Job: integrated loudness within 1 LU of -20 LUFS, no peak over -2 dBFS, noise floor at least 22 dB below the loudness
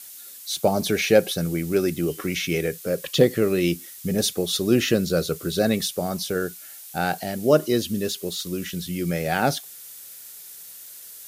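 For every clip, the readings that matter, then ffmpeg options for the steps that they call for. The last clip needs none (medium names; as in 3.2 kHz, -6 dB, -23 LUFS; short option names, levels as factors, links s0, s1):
noise floor -42 dBFS; noise floor target -46 dBFS; loudness -23.5 LUFS; peak level -4.5 dBFS; loudness target -20.0 LUFS
-> -af "afftdn=nr=6:nf=-42"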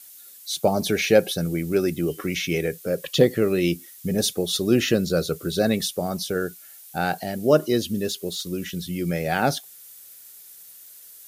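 noise floor -46 dBFS; loudness -23.5 LUFS; peak level -4.5 dBFS; loudness target -20.0 LUFS
-> -af "volume=1.5,alimiter=limit=0.794:level=0:latency=1"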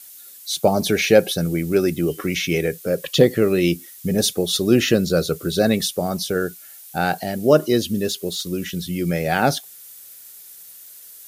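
loudness -20.5 LUFS; peak level -2.0 dBFS; noise floor -43 dBFS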